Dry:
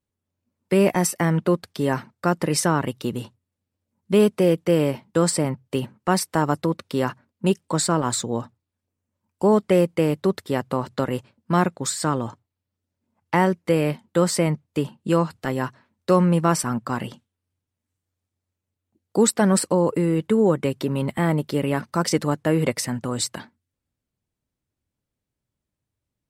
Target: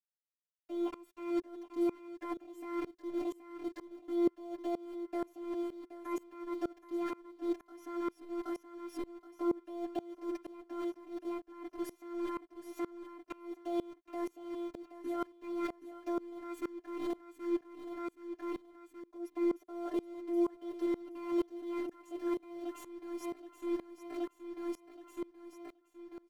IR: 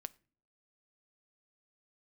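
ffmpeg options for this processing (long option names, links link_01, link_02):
-af "asetrate=60591,aresample=44100,atempo=0.727827,acrusher=bits=4:mix=0:aa=0.000001,alimiter=limit=-14.5dB:level=0:latency=1:release=161,afftfilt=real='hypot(re,im)*cos(PI*b)':imag='0':win_size=512:overlap=0.75,aecho=1:1:6.7:0.77,aecho=1:1:774|1548|2322|3096|3870:0.355|0.153|0.0656|0.0282|0.0121,areverse,acompressor=threshold=-43dB:ratio=6,areverse,lowpass=frequency=1500:poles=1,equalizer=frequency=360:width=5.4:gain=12.5,aeval=exprs='val(0)*pow(10,-24*if(lt(mod(-2.1*n/s,1),2*abs(-2.1)/1000),1-mod(-2.1*n/s,1)/(2*abs(-2.1)/1000),(mod(-2.1*n/s,1)-2*abs(-2.1)/1000)/(1-2*abs(-2.1)/1000))/20)':channel_layout=same,volume=8.5dB"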